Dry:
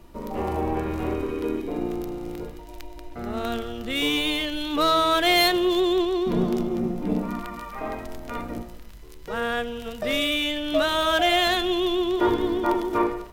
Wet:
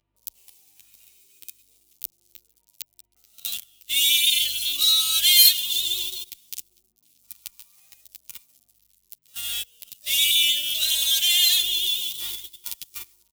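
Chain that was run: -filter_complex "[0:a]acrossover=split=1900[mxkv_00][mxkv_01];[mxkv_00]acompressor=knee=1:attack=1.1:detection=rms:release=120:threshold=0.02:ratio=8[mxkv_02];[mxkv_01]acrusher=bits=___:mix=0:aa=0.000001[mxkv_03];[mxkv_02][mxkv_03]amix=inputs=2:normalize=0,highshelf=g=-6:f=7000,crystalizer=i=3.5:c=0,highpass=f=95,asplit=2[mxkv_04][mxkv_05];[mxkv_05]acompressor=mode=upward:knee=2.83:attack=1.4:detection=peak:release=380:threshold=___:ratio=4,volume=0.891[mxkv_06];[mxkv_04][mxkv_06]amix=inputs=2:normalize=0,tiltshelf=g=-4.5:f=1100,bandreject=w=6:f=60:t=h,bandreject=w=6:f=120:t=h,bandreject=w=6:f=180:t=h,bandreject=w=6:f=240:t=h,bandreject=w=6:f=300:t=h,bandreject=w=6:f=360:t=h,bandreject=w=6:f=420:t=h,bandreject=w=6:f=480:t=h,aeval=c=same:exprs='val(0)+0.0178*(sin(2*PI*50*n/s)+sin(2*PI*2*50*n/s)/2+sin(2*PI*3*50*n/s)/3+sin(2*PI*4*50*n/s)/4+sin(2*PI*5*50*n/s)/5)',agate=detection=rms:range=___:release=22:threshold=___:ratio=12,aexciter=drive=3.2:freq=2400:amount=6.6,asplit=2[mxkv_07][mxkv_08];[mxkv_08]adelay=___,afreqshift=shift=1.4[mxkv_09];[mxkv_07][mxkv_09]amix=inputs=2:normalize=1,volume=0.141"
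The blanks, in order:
7, 0.0447, 0.0708, 0.0501, 9.7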